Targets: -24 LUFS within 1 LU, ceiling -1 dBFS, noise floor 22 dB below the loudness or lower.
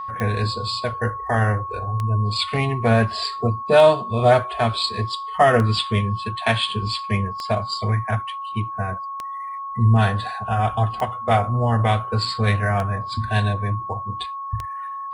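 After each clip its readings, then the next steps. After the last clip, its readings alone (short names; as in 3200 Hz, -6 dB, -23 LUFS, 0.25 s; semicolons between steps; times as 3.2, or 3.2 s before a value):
clicks 9; steady tone 1100 Hz; tone level -28 dBFS; loudness -21.5 LUFS; peak -2.5 dBFS; loudness target -24.0 LUFS
-> de-click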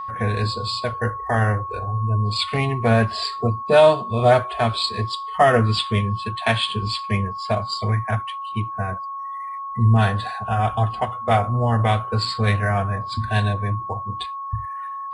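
clicks 0; steady tone 1100 Hz; tone level -28 dBFS
-> notch 1100 Hz, Q 30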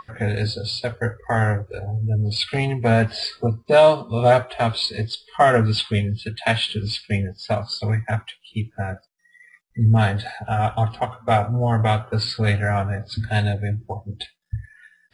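steady tone none; loudness -21.5 LUFS; peak -4.0 dBFS; loudness target -24.0 LUFS
-> gain -2.5 dB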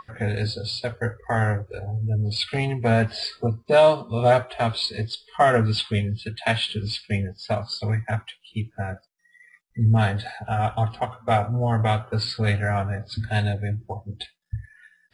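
loudness -24.0 LUFS; peak -6.5 dBFS; noise floor -64 dBFS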